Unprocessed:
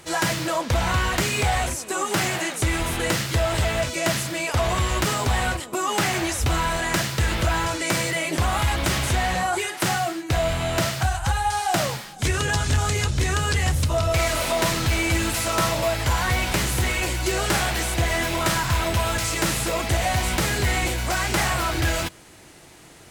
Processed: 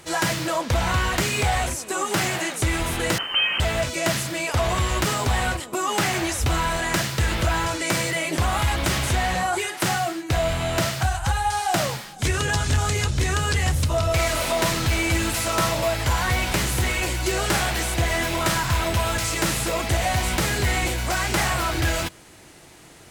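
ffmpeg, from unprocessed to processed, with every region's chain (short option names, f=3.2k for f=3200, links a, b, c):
-filter_complex "[0:a]asettb=1/sr,asplit=3[a][b][c];[a]atrim=end=3.184[d];[b]atrim=start=3.18:end=3.6,asetpts=PTS-STARTPTS,afade=t=in:d=0.004:c=qsin,afade=t=out:st=0.416:d=0.004:c=qsin,lowpass=f=2.7k:t=q:w=0.5098,lowpass=f=2.7k:t=q:w=0.6013,lowpass=f=2.7k:t=q:w=0.9,lowpass=f=2.7k:t=q:w=2.563,afreqshift=-3200,aeval=exprs='sgn(val(0))*max(abs(val(0))-0.00224,0)':c=same[e];[c]atrim=start=3.596[f];[d][e]acrossfade=d=0.004:c1=hsin:c2=qsin[g];[g][f]acrossfade=d=0.004:c1=qsin:c2=hsin"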